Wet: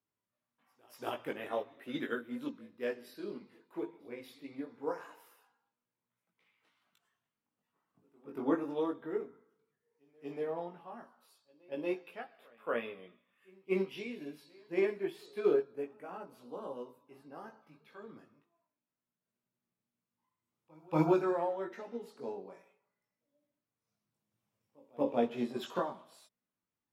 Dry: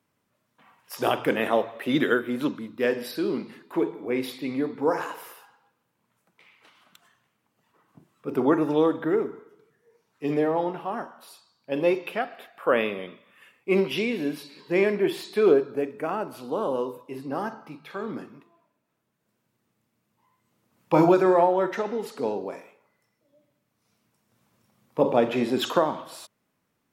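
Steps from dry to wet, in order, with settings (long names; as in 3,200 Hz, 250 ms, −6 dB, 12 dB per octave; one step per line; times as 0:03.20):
multi-voice chorus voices 4, 0.16 Hz, delay 19 ms, depth 2.6 ms
echo ahead of the sound 234 ms −23 dB
expander for the loud parts 1.5 to 1, over −33 dBFS
level −6.5 dB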